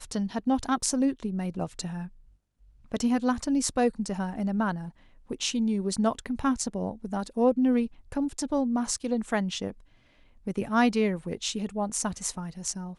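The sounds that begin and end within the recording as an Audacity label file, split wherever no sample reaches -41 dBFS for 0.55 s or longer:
2.920000	9.720000	sound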